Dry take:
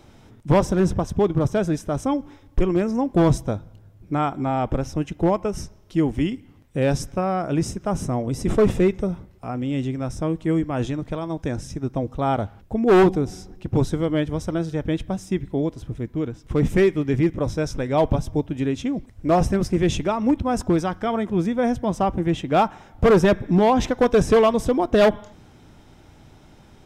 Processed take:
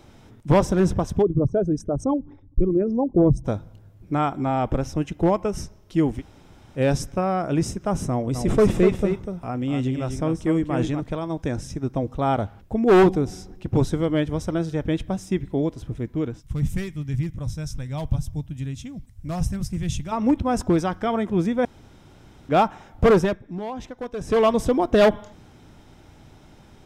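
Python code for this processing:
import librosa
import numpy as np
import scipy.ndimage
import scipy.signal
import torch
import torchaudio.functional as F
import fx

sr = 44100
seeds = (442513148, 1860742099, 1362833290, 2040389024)

y = fx.envelope_sharpen(x, sr, power=2.0, at=(1.21, 3.44), fade=0.02)
y = fx.echo_single(y, sr, ms=246, db=-7.0, at=(8.34, 10.99), fade=0.02)
y = fx.curve_eq(y, sr, hz=(140.0, 390.0, 680.0, 2200.0, 11000.0), db=(0, -20, -15, -10, 2), at=(16.4, 20.11), fade=0.02)
y = fx.edit(y, sr, fx.room_tone_fill(start_s=6.19, length_s=0.59, crossfade_s=0.06),
    fx.room_tone_fill(start_s=21.65, length_s=0.84),
    fx.fade_down_up(start_s=23.1, length_s=1.39, db=-14.5, fade_s=0.29), tone=tone)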